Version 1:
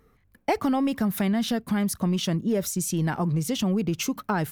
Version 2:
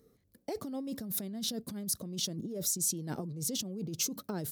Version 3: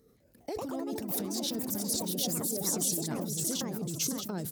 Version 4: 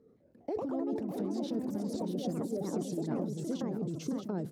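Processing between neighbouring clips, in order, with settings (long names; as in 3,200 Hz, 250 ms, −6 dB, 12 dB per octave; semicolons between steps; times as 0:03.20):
flat-topped bell 1,500 Hz −14 dB 2.3 octaves; compressor whose output falls as the input rises −30 dBFS, ratio −1; high-pass filter 230 Hz 6 dB per octave; level −4 dB
repeating echo 632 ms, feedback 20%, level −8 dB; delay with pitch and tempo change per echo 203 ms, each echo +4 semitones, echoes 2; level that may fall only so fast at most 45 dB per second
resonant band-pass 340 Hz, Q 0.6; level +2.5 dB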